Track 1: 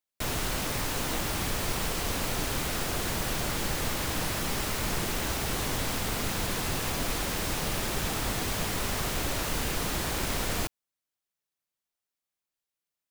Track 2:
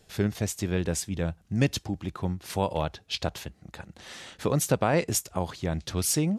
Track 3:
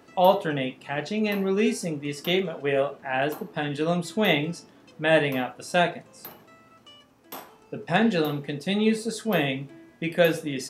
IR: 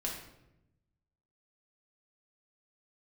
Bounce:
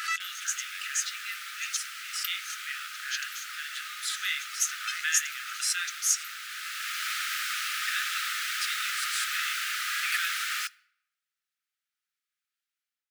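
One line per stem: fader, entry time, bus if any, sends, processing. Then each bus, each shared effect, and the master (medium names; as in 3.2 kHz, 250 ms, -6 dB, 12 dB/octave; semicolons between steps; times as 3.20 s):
-1.5 dB, 0.00 s, send -20.5 dB, treble shelf 4.5 kHz -11 dB; level rider gain up to 8 dB; auto duck -10 dB, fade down 0.65 s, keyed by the second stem
-5.0 dB, 0.00 s, no send, peaking EQ 6.4 kHz +14.5 dB 0.3 oct
-6.0 dB, 0.00 s, no send, swell ahead of each attack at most 29 dB/s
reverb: on, RT60 0.90 s, pre-delay 5 ms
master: brick-wall FIR high-pass 1.2 kHz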